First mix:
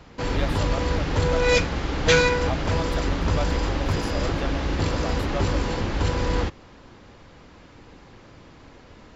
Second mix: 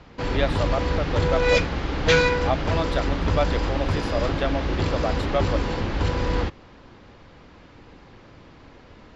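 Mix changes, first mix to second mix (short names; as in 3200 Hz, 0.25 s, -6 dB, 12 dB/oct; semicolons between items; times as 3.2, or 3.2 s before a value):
speech +7.5 dB; master: add LPF 5200 Hz 12 dB/oct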